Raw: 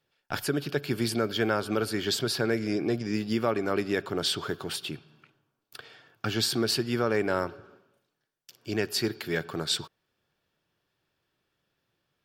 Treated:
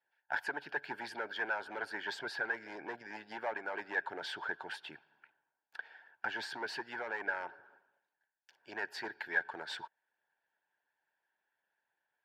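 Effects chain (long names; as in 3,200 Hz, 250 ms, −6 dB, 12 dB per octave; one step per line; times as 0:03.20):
hard clipping −23 dBFS, distortion −12 dB
pair of resonant band-passes 1,200 Hz, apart 0.83 octaves
harmonic and percussive parts rebalanced harmonic −8 dB
level +7 dB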